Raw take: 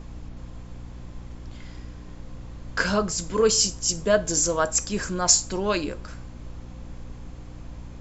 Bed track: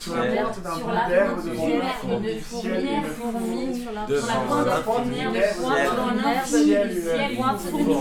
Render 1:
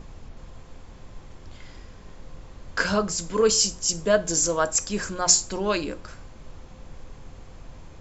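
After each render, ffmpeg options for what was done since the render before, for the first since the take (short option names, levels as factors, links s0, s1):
-af "bandreject=f=60:t=h:w=6,bandreject=f=120:t=h:w=6,bandreject=f=180:t=h:w=6,bandreject=f=240:t=h:w=6,bandreject=f=300:t=h:w=6,bandreject=f=360:t=h:w=6"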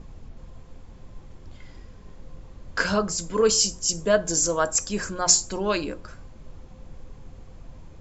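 -af "afftdn=nr=6:nf=-46"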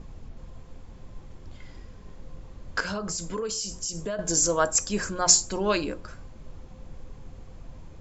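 -filter_complex "[0:a]asettb=1/sr,asplit=3[s0][s1][s2];[s0]atrim=end=2.804[s3];[s1]atrim=start=2.8:end=4.19,asetpts=PTS-STARTPTS,afade=t=in:d=0.004:c=qsin,afade=t=out:st=1.386:d=0.004:c=qsin,acompressor=threshold=0.0447:ratio=12:attack=3.2:release=140:knee=1:detection=peak[s4];[s2]atrim=start=4.186[s5];[s3][s4]acrossfade=d=0.004:c1=hsin:c2=qsin[s6];[s6][s5]acrossfade=d=0.004:c1=qsin:c2=hsin"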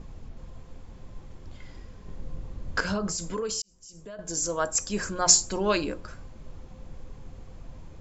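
-filter_complex "[0:a]asettb=1/sr,asplit=3[s0][s1][s2];[s0]atrim=end=2.084[s3];[s1]atrim=start=2.08:end=3.07,asetpts=PTS-STARTPTS,afade=t=in:d=0.004:c=qsin,afade=t=out:st=0.986:d=0.004:c=qsin,lowshelf=f=380:g=6[s4];[s2]atrim=start=3.066[s5];[s3][s4]acrossfade=d=0.004:c1=hsin:c2=qsin[s6];[s6][s5]acrossfade=d=0.004:c1=qsin:c2=hsin,asplit=2[s7][s8];[s7]atrim=end=3.62,asetpts=PTS-STARTPTS,afade=t=out:st=3.616:d=0.004:c=hsin[s9];[s8]atrim=start=3.62,asetpts=PTS-STARTPTS,afade=t=in:d=1.63[s10];[s9][s10]concat=n=2:v=0:a=1"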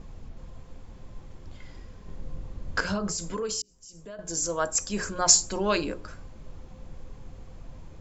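-af "bandreject=f=60:t=h:w=6,bandreject=f=120:t=h:w=6,bandreject=f=180:t=h:w=6,bandreject=f=240:t=h:w=6,bandreject=f=300:t=h:w=6,bandreject=f=360:t=h:w=6,bandreject=f=420:t=h:w=6"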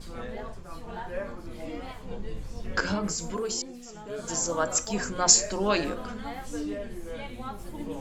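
-filter_complex "[1:a]volume=0.168[s0];[0:a][s0]amix=inputs=2:normalize=0"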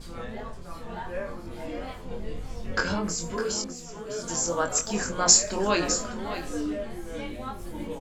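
-filter_complex "[0:a]asplit=2[s0][s1];[s1]adelay=23,volume=0.531[s2];[s0][s2]amix=inputs=2:normalize=0,aecho=1:1:606:0.282"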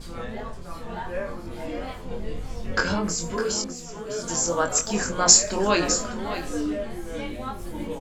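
-af "volume=1.41"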